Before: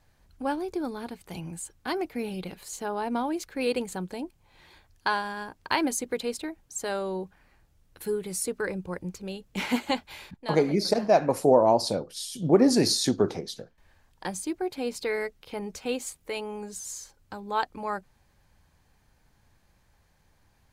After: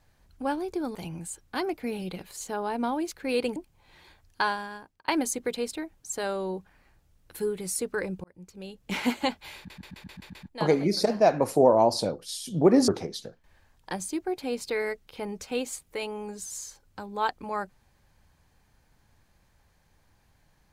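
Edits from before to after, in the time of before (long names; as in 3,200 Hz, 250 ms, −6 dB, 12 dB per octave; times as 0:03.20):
0:00.95–0:01.27: remove
0:03.88–0:04.22: remove
0:05.15–0:05.74: fade out
0:08.90–0:09.60: fade in
0:10.23: stutter 0.13 s, 7 plays
0:12.76–0:13.22: remove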